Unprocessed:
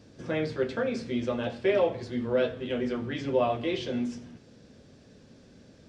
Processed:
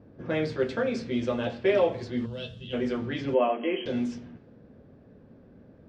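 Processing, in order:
low-pass that shuts in the quiet parts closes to 1,100 Hz, open at −24.5 dBFS
0:02.26–0:02.73: gain on a spectral selection 230–2,600 Hz −16 dB
0:03.34–0:03.86: linear-phase brick-wall band-pass 180–3,300 Hz
level +1.5 dB

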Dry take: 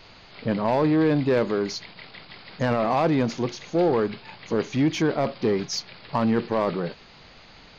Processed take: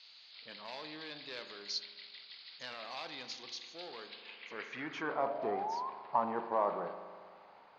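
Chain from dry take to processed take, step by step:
sound drawn into the spectrogram rise, 0:05.03–0:05.90, 420–1,100 Hz −35 dBFS
spring reverb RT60 1.8 s, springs 39 ms, chirp 35 ms, DRR 8.5 dB
band-pass filter sweep 4,100 Hz → 880 Hz, 0:04.06–0:05.31
level −2 dB

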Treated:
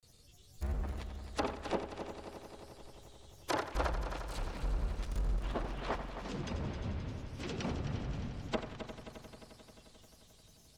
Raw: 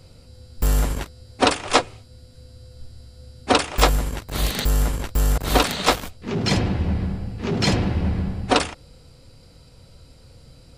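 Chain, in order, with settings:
first-order pre-emphasis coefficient 0.8
treble cut that deepens with the level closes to 1,100 Hz, closed at −27 dBFS
granular cloud 100 ms, grains 20 per second, spray 37 ms, pitch spread up and down by 7 semitones
on a send: echo machine with several playback heads 88 ms, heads first and third, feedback 74%, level −11 dB
on the sum: level −2.5 dB

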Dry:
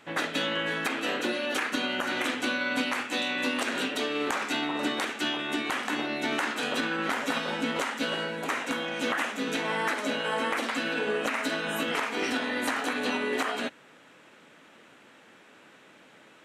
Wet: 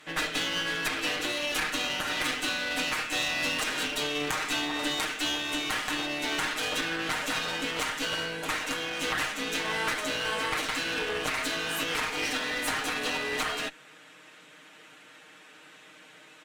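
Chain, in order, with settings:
tilt shelving filter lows −4.5 dB, about 1,300 Hz
comb filter 6.5 ms, depth 77%
asymmetric clip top −35.5 dBFS

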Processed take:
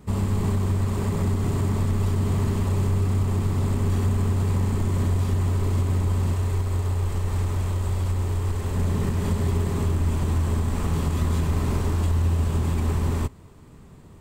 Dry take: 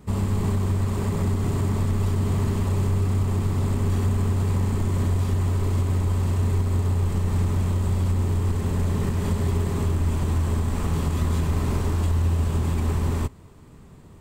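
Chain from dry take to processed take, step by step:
0:06.33–0:08.76: parametric band 190 Hz −8.5 dB 1.2 octaves

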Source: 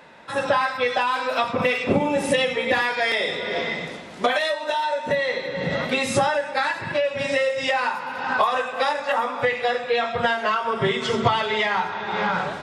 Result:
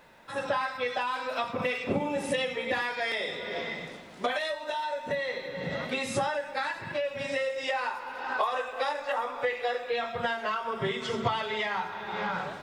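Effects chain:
0:07.56–0:09.91: low shelf with overshoot 250 Hz −9 dB, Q 1.5
background noise pink −60 dBFS
level −8.5 dB

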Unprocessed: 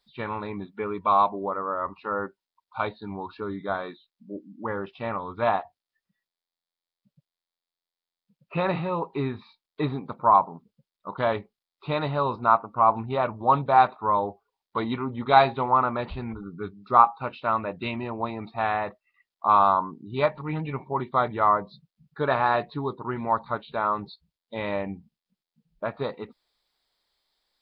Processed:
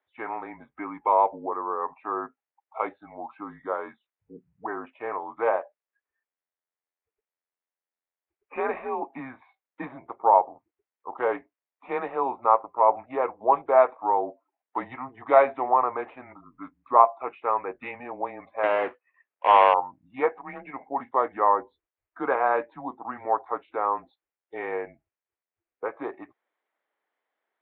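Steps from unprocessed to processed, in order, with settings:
0:18.63–0:19.74: each half-wave held at its own peak
single-sideband voice off tune −130 Hz 480–2,500 Hz

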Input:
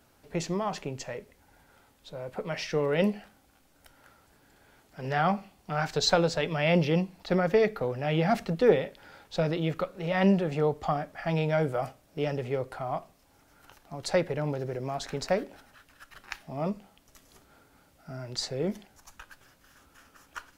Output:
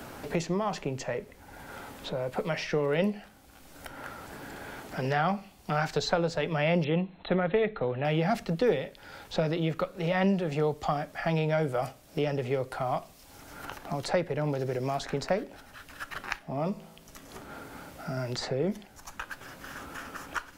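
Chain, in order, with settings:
0:06.84–0:08.05: linear-phase brick-wall low-pass 4,200 Hz
0:16.39–0:18.17: tuned comb filter 55 Hz, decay 0.87 s, harmonics all, mix 40%
multiband upward and downward compressor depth 70%

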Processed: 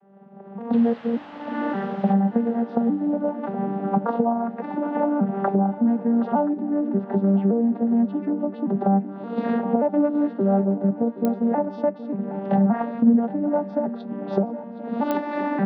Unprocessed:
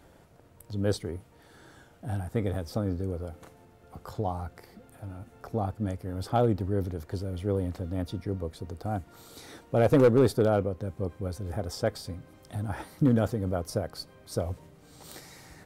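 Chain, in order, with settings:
vocoder with an arpeggio as carrier minor triad, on G3, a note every 577 ms
camcorder AGC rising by 41 dB per second
low-shelf EQ 190 Hz +6.5 dB
0:00.73–0:02.13: bit-depth reduction 6 bits, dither triangular
loudspeaker in its box 150–2,600 Hz, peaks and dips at 210 Hz +4 dB, 320 Hz −5 dB, 570 Hz +3 dB, 810 Hz +8 dB, 2,300 Hz −7 dB
feedback echo with a long and a short gap by turns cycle 1,027 ms, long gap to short 3 to 1, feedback 39%, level −15 dB
digital clicks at 0:11.25/0:15.11, −12 dBFS

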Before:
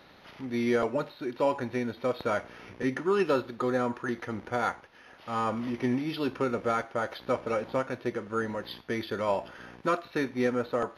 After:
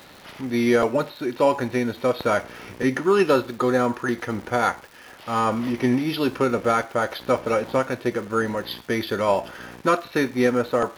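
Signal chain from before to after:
high-shelf EQ 8,800 Hz +10.5 dB
surface crackle 350 per second −45 dBFS
level +7.5 dB

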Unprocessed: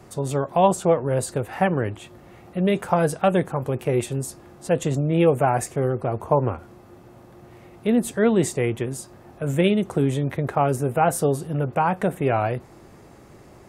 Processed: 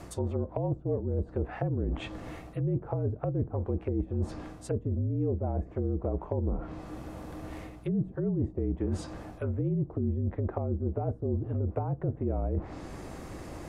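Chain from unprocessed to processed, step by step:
treble cut that deepens with the level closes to 350 Hz, closed at −19 dBFS
reversed playback
downward compressor 6 to 1, threshold −33 dBFS, peak gain reduction 15.5 dB
reversed playback
frequency shifter −44 Hz
mains hum 60 Hz, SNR 21 dB
level +5.5 dB

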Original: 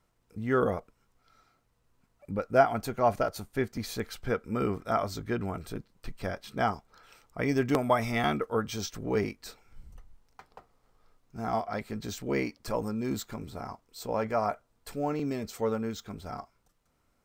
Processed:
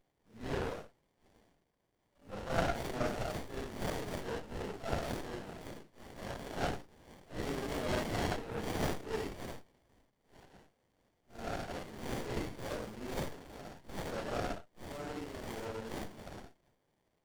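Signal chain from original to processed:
random phases in long frames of 200 ms
resonant band-pass 5,700 Hz, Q 0.94
windowed peak hold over 33 samples
level +12.5 dB

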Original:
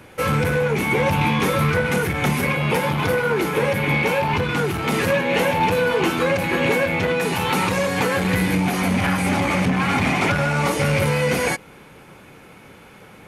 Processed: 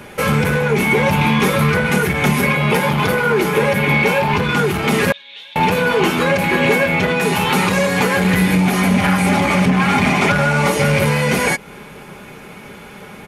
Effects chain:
comb filter 4.9 ms, depth 42%
in parallel at −0.5 dB: downward compressor, threshold −28 dBFS, peak gain reduction 13.5 dB
0:05.12–0:05.56: on the sum: resonant band-pass 3,600 Hz, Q 12
level +2 dB

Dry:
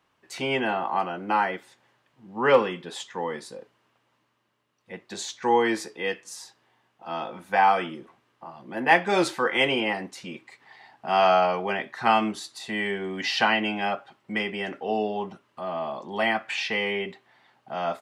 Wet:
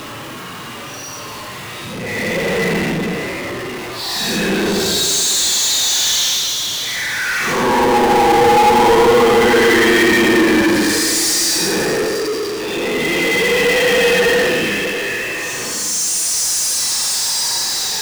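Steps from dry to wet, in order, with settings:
transient designer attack −4 dB, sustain +1 dB
extreme stretch with random phases 10×, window 0.05 s, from 0:04.68
power curve on the samples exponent 0.35
level +2 dB

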